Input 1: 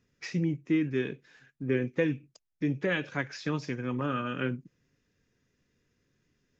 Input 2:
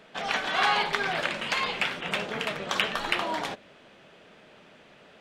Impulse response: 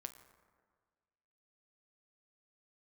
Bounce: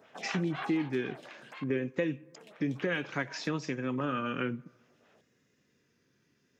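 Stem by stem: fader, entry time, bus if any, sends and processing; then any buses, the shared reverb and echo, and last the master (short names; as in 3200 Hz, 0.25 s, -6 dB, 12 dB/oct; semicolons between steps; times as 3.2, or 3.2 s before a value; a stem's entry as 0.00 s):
+2.5 dB, 0.00 s, send -13 dB, vibrato 0.61 Hz 58 cents
-4.5 dB, 0.00 s, muted 1.64–2.36, send -15.5 dB, notch 4600 Hz, Q 16; photocell phaser 4 Hz; auto duck -20 dB, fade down 1.70 s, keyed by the first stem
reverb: on, RT60 1.6 s, pre-delay 7 ms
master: HPF 140 Hz 12 dB/oct; compressor 2:1, threshold -32 dBFS, peak gain reduction 8 dB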